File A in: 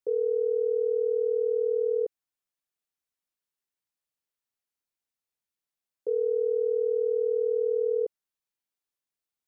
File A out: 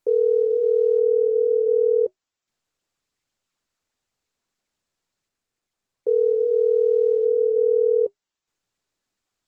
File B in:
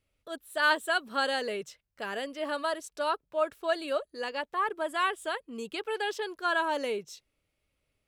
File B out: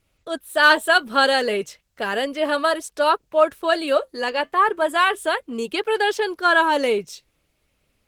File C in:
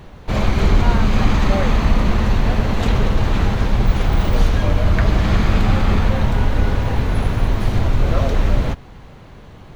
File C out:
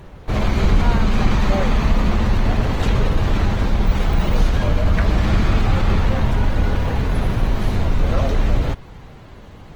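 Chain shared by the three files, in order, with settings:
flange 0.34 Hz, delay 1.9 ms, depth 3.7 ms, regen -76%; in parallel at -7.5 dB: hard clipper -23 dBFS; on the sum: Opus 20 kbps 48 kHz; normalise loudness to -20 LUFS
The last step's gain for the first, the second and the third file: +8.5 dB, +13.0 dB, +1.5 dB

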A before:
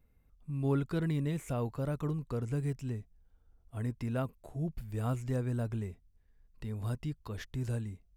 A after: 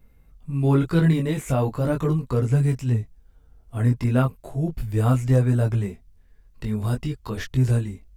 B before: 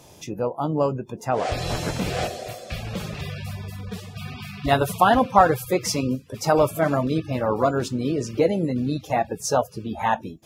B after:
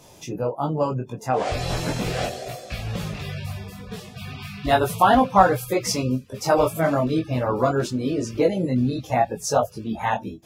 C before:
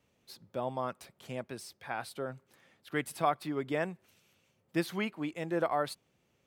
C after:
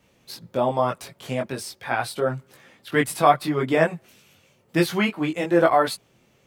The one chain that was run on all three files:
chorus voices 4, 0.35 Hz, delay 20 ms, depth 4.8 ms; normalise loudness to -23 LUFS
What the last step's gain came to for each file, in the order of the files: +15.0 dB, +3.5 dB, +15.5 dB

